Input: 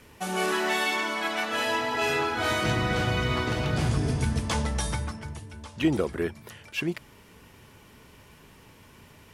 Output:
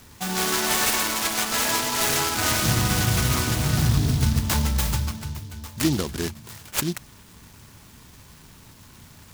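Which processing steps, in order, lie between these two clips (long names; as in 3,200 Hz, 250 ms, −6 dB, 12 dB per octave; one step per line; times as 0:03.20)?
parametric band 500 Hz −11.5 dB 1.3 octaves
short delay modulated by noise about 4,300 Hz, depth 0.12 ms
level +6.5 dB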